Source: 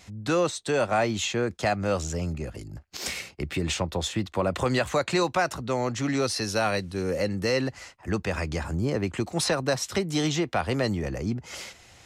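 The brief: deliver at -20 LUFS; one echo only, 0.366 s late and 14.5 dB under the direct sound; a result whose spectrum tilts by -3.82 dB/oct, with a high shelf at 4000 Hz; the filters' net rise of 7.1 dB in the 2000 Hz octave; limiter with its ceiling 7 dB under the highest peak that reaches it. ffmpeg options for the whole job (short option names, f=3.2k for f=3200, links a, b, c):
-af "equalizer=f=2k:t=o:g=8,highshelf=f=4k:g=4.5,alimiter=limit=-15.5dB:level=0:latency=1,aecho=1:1:366:0.188,volume=7dB"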